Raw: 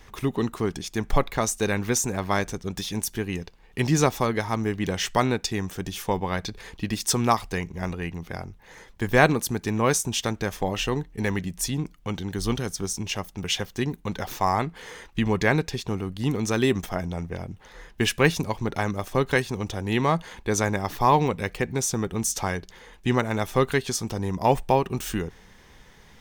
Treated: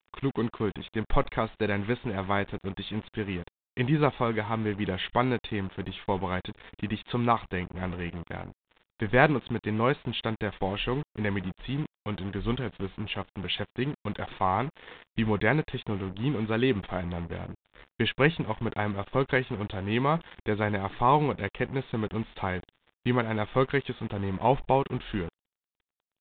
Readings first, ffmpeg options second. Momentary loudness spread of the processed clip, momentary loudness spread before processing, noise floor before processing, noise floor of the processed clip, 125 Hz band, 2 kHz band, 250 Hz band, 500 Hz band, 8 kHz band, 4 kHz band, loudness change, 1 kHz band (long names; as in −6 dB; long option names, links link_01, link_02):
10 LU, 10 LU, −52 dBFS, below −85 dBFS, −3.0 dB, −3.0 dB, −3.0 dB, −3.0 dB, below −40 dB, −5.0 dB, −3.5 dB, −3.0 dB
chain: -af "acrusher=bits=5:mix=0:aa=0.5,volume=-3dB" -ar 8000 -c:a pcm_mulaw